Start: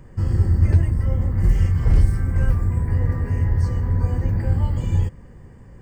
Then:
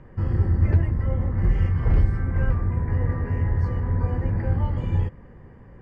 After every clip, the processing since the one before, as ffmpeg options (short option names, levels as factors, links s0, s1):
-af "lowpass=2300,lowshelf=f=230:g=-5.5,volume=1.19"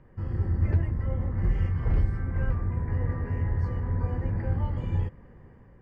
-af "dynaudnorm=f=160:g=5:m=1.58,volume=0.376"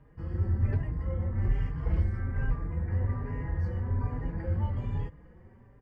-filter_complex "[0:a]asplit=2[s0][s1];[s1]adelay=4.5,afreqshift=1.2[s2];[s0][s2]amix=inputs=2:normalize=1"